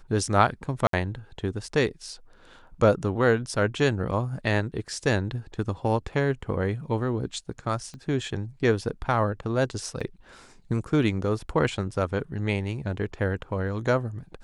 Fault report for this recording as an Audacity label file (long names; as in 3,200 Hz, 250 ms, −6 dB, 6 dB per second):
0.870000	0.930000	drop-out 63 ms
7.940000	7.940000	click −29 dBFS
10.000000	10.010000	drop-out 5.7 ms